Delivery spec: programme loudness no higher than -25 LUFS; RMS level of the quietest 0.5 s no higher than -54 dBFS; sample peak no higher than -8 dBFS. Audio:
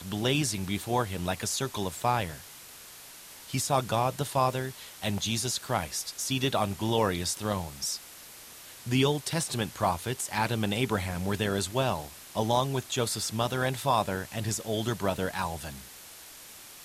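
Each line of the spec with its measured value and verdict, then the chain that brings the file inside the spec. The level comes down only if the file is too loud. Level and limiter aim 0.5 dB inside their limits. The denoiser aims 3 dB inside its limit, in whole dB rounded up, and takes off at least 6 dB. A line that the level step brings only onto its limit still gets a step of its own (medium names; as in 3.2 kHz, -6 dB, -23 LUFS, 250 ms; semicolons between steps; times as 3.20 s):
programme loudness -29.5 LUFS: pass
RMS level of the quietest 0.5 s -48 dBFS: fail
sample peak -12.5 dBFS: pass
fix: noise reduction 9 dB, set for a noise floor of -48 dBFS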